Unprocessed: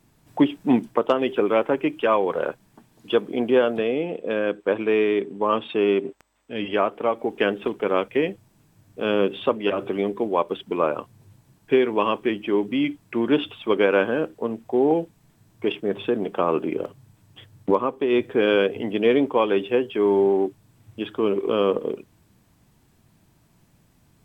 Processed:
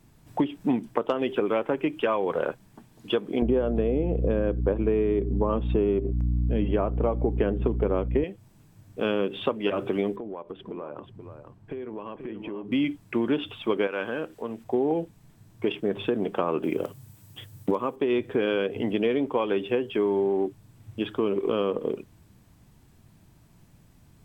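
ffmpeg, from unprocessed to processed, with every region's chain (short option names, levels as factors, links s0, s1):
-filter_complex "[0:a]asettb=1/sr,asplit=3[s0][s1][s2];[s0]atrim=end=3.424[s3];[s1]atrim=start=3.42:end=8.24,asetpts=PTS-STARTPTS,afade=t=in:d=0.004:c=qsin,afade=t=out:st=4.816:d=0.004:c=qsin,tiltshelf=f=1200:g=9,aeval=exprs='val(0)+0.0562*(sin(2*PI*60*n/s)+sin(2*PI*2*60*n/s)/2+sin(2*PI*3*60*n/s)/3+sin(2*PI*4*60*n/s)/4+sin(2*PI*5*60*n/s)/5)':c=same[s4];[s2]atrim=start=8.236[s5];[s3][s4]acrossfade=d=0.004:c1=hsin:c2=qsin[s6];[s6][s5]acrossfade=d=0.004:c1=qsin:c2=hsin,asettb=1/sr,asplit=3[s7][s8][s9];[s7]atrim=end=10.164[s10];[s8]atrim=start=10.16:end=12.72,asetpts=PTS-STARTPTS,afade=t=in:d=0.004:c=qsin,afade=t=out:st=2.556:d=0.004:c=qsin,lowpass=f=1100:p=1,acompressor=threshold=0.0224:ratio=10:attack=3.2:release=140:knee=1:detection=peak,aecho=1:1:483:0.376,atrim=end_sample=112896[s11];[s9]atrim=start=12.716[s12];[s10][s11]acrossfade=d=0.004:c1=hsin:c2=qsin[s13];[s13][s12]acrossfade=d=0.004:c1=qsin:c2=hsin,asettb=1/sr,asplit=3[s14][s15][s16];[s14]atrim=end=13.874[s17];[s15]atrim=start=13.87:end=14.64,asetpts=PTS-STARTPTS,afade=t=in:d=0.004:c=qsin,afade=t=out:st=0.766:d=0.004:c=qsin,tiltshelf=f=730:g=-4,acompressor=threshold=0.0112:ratio=1.5:attack=3.2:release=140:knee=1:detection=peak[s18];[s16]atrim=start=14.636[s19];[s17][s18]acrossfade=d=0.004:c1=hsin:c2=qsin[s20];[s20][s19]acrossfade=d=0.004:c1=qsin:c2=hsin,asettb=1/sr,asplit=3[s21][s22][s23];[s21]atrim=end=16.634[s24];[s22]atrim=start=16.63:end=17.96,asetpts=PTS-STARTPTS,afade=t=in:d=0.004:c=qsin,afade=t=out:st=1.326:d=0.004:c=qsin,highpass=47,aemphasis=mode=production:type=50kf[s25];[s23]atrim=start=17.956[s26];[s24][s25]acrossfade=d=0.004:c1=hsin:c2=qsin[s27];[s27][s26]acrossfade=d=0.004:c1=qsin:c2=hsin,lowshelf=f=140:g=7,acompressor=threshold=0.0891:ratio=6"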